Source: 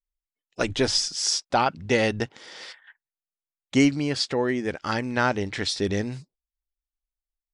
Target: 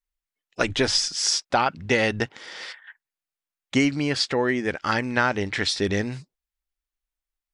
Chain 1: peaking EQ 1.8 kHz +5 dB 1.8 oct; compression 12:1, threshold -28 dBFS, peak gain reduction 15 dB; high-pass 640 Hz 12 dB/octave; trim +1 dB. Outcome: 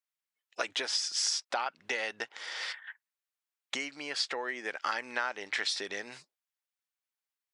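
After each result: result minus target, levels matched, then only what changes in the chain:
compression: peak gain reduction +10.5 dB; 500 Hz band -4.5 dB
change: compression 12:1, threshold -16.5 dBFS, peak gain reduction 4.5 dB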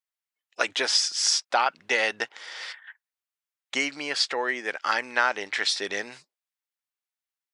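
500 Hz band -4.5 dB
remove: high-pass 640 Hz 12 dB/octave

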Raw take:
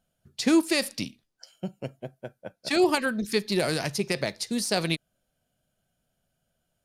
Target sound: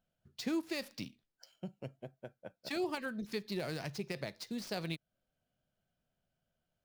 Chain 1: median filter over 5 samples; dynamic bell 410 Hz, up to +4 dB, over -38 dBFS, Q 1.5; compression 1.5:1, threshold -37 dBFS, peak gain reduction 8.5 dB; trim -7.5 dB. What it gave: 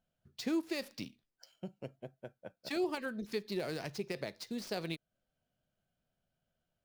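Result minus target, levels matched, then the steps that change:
125 Hz band -3.5 dB
change: dynamic bell 130 Hz, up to +4 dB, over -38 dBFS, Q 1.5

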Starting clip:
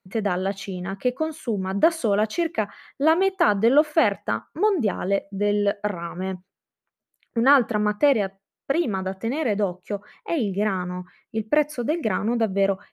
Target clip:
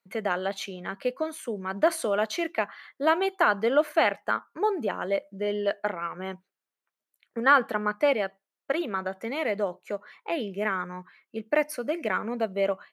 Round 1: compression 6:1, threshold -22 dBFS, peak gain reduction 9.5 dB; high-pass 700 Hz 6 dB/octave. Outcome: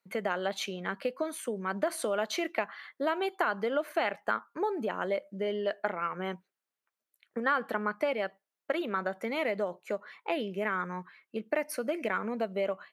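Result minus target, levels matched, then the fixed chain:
compression: peak gain reduction +9.5 dB
high-pass 700 Hz 6 dB/octave

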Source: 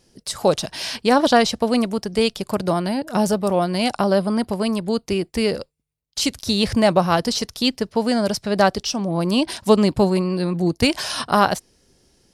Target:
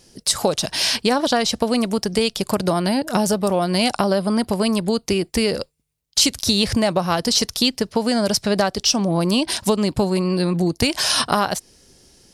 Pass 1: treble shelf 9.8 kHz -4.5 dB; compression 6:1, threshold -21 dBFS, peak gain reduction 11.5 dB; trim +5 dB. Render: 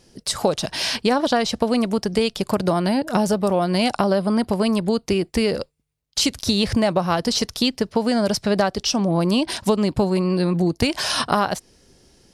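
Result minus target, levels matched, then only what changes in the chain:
8 kHz band -5.0 dB
add after compression: treble shelf 4.1 kHz +8 dB

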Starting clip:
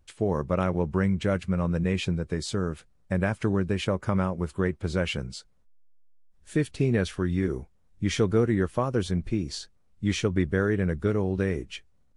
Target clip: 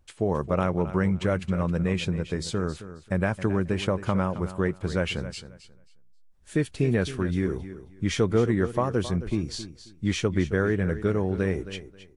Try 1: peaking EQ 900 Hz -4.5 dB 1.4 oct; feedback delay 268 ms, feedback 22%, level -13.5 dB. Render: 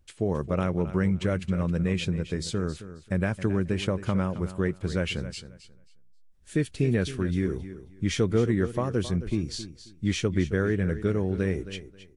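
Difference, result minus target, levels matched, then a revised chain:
1 kHz band -4.0 dB
peaking EQ 900 Hz +2 dB 1.4 oct; feedback delay 268 ms, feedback 22%, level -13.5 dB

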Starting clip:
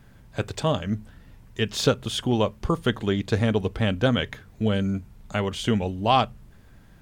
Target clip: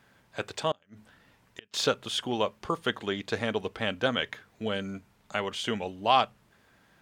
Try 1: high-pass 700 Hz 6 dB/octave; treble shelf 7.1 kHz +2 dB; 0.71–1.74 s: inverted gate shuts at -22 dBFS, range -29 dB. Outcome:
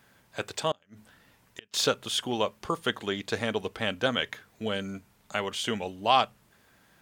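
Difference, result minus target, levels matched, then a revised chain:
8 kHz band +4.0 dB
high-pass 700 Hz 6 dB/octave; treble shelf 7.1 kHz -7.5 dB; 0.71–1.74 s: inverted gate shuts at -22 dBFS, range -29 dB

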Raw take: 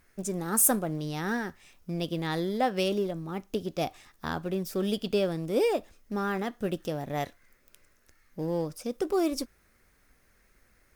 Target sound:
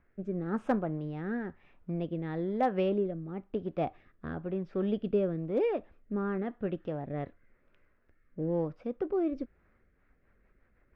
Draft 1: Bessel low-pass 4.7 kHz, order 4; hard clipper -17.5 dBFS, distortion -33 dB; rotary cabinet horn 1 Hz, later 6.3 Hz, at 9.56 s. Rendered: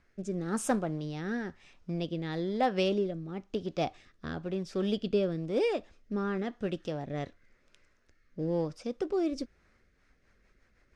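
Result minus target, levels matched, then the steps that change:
4 kHz band +12.5 dB
change: Bessel low-pass 1.6 kHz, order 4

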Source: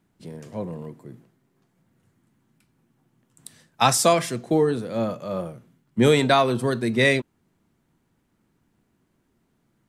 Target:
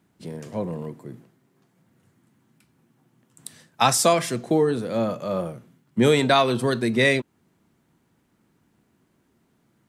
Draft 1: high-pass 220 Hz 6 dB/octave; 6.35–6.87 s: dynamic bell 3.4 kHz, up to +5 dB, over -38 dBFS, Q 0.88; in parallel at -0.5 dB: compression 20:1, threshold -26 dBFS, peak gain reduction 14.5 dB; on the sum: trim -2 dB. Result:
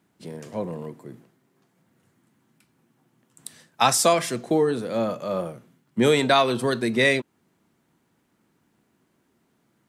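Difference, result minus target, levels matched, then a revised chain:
125 Hz band -3.5 dB
high-pass 82 Hz 6 dB/octave; 6.35–6.87 s: dynamic bell 3.4 kHz, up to +5 dB, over -38 dBFS, Q 0.88; in parallel at -0.5 dB: compression 20:1, threshold -26 dBFS, peak gain reduction 15 dB; on the sum: trim -2 dB

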